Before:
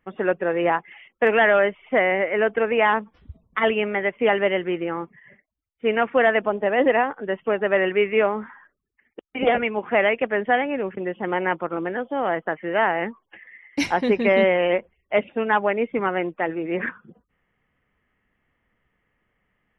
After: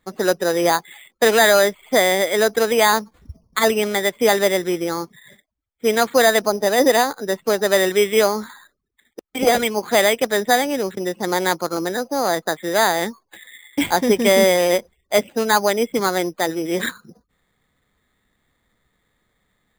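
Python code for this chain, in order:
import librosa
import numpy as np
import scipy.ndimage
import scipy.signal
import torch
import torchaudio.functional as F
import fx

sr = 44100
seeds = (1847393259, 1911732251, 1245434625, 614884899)

y = np.repeat(scipy.signal.resample_poly(x, 1, 8), 8)[:len(x)]
y = y * librosa.db_to_amplitude(3.5)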